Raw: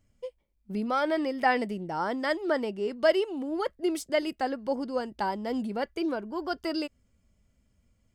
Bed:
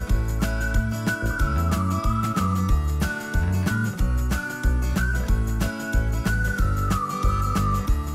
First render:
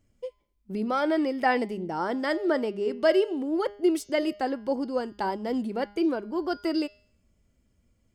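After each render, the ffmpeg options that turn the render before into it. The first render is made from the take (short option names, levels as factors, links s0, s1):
-af "equalizer=f=350:w=1.7:g=5.5,bandreject=f=204:t=h:w=4,bandreject=f=408:t=h:w=4,bandreject=f=612:t=h:w=4,bandreject=f=816:t=h:w=4,bandreject=f=1020:t=h:w=4,bandreject=f=1224:t=h:w=4,bandreject=f=1428:t=h:w=4,bandreject=f=1632:t=h:w=4,bandreject=f=1836:t=h:w=4,bandreject=f=2040:t=h:w=4,bandreject=f=2244:t=h:w=4,bandreject=f=2448:t=h:w=4,bandreject=f=2652:t=h:w=4,bandreject=f=2856:t=h:w=4,bandreject=f=3060:t=h:w=4,bandreject=f=3264:t=h:w=4,bandreject=f=3468:t=h:w=4,bandreject=f=3672:t=h:w=4,bandreject=f=3876:t=h:w=4,bandreject=f=4080:t=h:w=4,bandreject=f=4284:t=h:w=4,bandreject=f=4488:t=h:w=4,bandreject=f=4692:t=h:w=4,bandreject=f=4896:t=h:w=4,bandreject=f=5100:t=h:w=4,bandreject=f=5304:t=h:w=4,bandreject=f=5508:t=h:w=4,bandreject=f=5712:t=h:w=4,bandreject=f=5916:t=h:w=4,bandreject=f=6120:t=h:w=4,bandreject=f=6324:t=h:w=4,bandreject=f=6528:t=h:w=4,bandreject=f=6732:t=h:w=4,bandreject=f=6936:t=h:w=4"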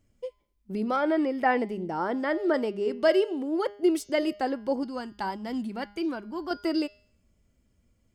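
-filter_complex "[0:a]asettb=1/sr,asplit=3[s0][s1][s2];[s0]atrim=end=0.964[s3];[s1]atrim=start=0.96:end=2.54,asetpts=PTS-STARTPTS,afade=t=in:d=0.004:c=qsin,afade=t=out:st=1.576:d=0.004:c=qsin,acrossover=split=2900[s4][s5];[s5]acompressor=threshold=0.00178:ratio=4:attack=1:release=60[s6];[s4][s6]amix=inputs=2:normalize=0[s7];[s2]atrim=start=2.536[s8];[s3][s7]acrossfade=d=0.004:c1=hsin:c2=qsin[s9];[s9][s8]acrossfade=d=0.004:c1=qsin:c2=hsin,asettb=1/sr,asplit=3[s10][s11][s12];[s10]atrim=end=3.084[s13];[s11]atrim=start=3.08:end=3.83,asetpts=PTS-STARTPTS,afade=t=in:d=0.004:c=qsin,afade=t=out:st=0.746:d=0.004:c=qsin,highpass=f=160:p=1[s14];[s12]atrim=start=3.826[s15];[s13][s14]acrossfade=d=0.004:c1=hsin:c2=qsin[s16];[s16][s15]acrossfade=d=0.004:c1=qsin:c2=hsin,asettb=1/sr,asplit=3[s17][s18][s19];[s17]atrim=end=4.834[s20];[s18]atrim=start=4.83:end=6.51,asetpts=PTS-STARTPTS,afade=t=in:d=0.004:c=qsin,afade=t=out:st=1.676:d=0.004:c=qsin,equalizer=f=470:w=1.5:g=-10.5[s21];[s19]atrim=start=6.506[s22];[s20][s21]acrossfade=d=0.004:c1=hsin:c2=qsin[s23];[s23][s22]acrossfade=d=0.004:c1=qsin:c2=hsin"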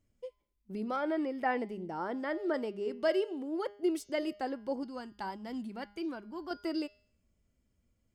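-af "volume=0.422"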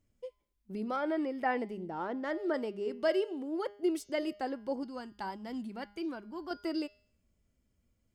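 -filter_complex "[0:a]asettb=1/sr,asplit=3[s0][s1][s2];[s0]atrim=end=1.894[s3];[s1]atrim=start=1.89:end=2.31,asetpts=PTS-STARTPTS,afade=t=in:d=0.004:c=qsin,afade=t=out:st=0.416:d=0.004:c=qsin,adynamicsmooth=sensitivity=7:basefreq=2500[s4];[s2]atrim=start=2.306[s5];[s3][s4]acrossfade=d=0.004:c1=hsin:c2=qsin[s6];[s6][s5]acrossfade=d=0.004:c1=qsin:c2=hsin"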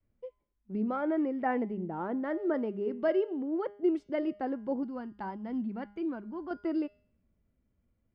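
-af "lowpass=1900,adynamicequalizer=threshold=0.00355:dfrequency=190:dqfactor=0.87:tfrequency=190:tqfactor=0.87:attack=5:release=100:ratio=0.375:range=3.5:mode=boostabove:tftype=bell"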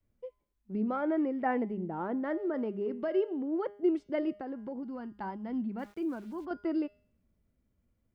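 -filter_complex "[0:a]asettb=1/sr,asplit=3[s0][s1][s2];[s0]atrim=end=2.424[s3];[s1]atrim=start=2.42:end=3.15,asetpts=PTS-STARTPTS,afade=t=in:d=0.004:c=qsin,afade=t=out:st=0.726:d=0.004:c=qsin,acompressor=threshold=0.0398:ratio=6:attack=3.2:release=140:knee=1:detection=peak[s4];[s2]atrim=start=3.146[s5];[s3][s4]acrossfade=d=0.004:c1=hsin:c2=qsin[s6];[s6][s5]acrossfade=d=0.004:c1=qsin:c2=hsin,asettb=1/sr,asplit=3[s7][s8][s9];[s7]atrim=end=4.384[s10];[s8]atrim=start=4.38:end=5.06,asetpts=PTS-STARTPTS,afade=t=in:d=0.004:c=qsin,afade=t=out:st=0.676:d=0.004:c=qsin,acompressor=threshold=0.0178:ratio=6:attack=3.2:release=140:knee=1:detection=peak[s11];[s9]atrim=start=5.056[s12];[s10][s11]acrossfade=d=0.004:c1=hsin:c2=qsin[s13];[s13][s12]acrossfade=d=0.004:c1=qsin:c2=hsin,asplit=3[s14][s15][s16];[s14]afade=t=out:st=5.78:d=0.02[s17];[s15]aeval=exprs='val(0)*gte(abs(val(0)),0.002)':c=same,afade=t=in:st=5.78:d=0.02,afade=t=out:st=6.44:d=0.02[s18];[s16]afade=t=in:st=6.44:d=0.02[s19];[s17][s18][s19]amix=inputs=3:normalize=0"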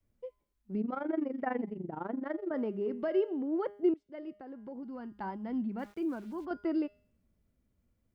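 -filter_complex "[0:a]asettb=1/sr,asplit=3[s0][s1][s2];[s0]atrim=end=0.814[s3];[s1]atrim=start=0.81:end=2.51,asetpts=PTS-STARTPTS,afade=t=in:d=0.004:c=qsin,afade=t=out:st=1.696:d=0.004:c=qsin,tremolo=f=24:d=0.857[s4];[s2]atrim=start=2.506[s5];[s3][s4]acrossfade=d=0.004:c1=hsin:c2=qsin[s6];[s6][s5]acrossfade=d=0.004:c1=qsin:c2=hsin,asplit=2[s7][s8];[s7]atrim=end=3.94,asetpts=PTS-STARTPTS,afade=t=out:st=3.936:d=0.004:c=hsin:silence=0.0749894[s9];[s8]atrim=start=3.94,asetpts=PTS-STARTPTS,afade=t=in:d=1.37:silence=0.0749894[s10];[s9][s10]concat=n=2:v=0:a=1"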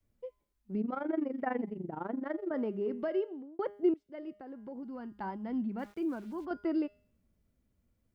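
-filter_complex "[0:a]asplit=2[s0][s1];[s0]atrim=end=3.59,asetpts=PTS-STARTPTS,afade=t=out:st=3:d=0.59[s2];[s1]atrim=start=3.59,asetpts=PTS-STARTPTS,afade=t=in:d=0.004:c=hsin[s3];[s2][s3]concat=n=2:v=0:a=1"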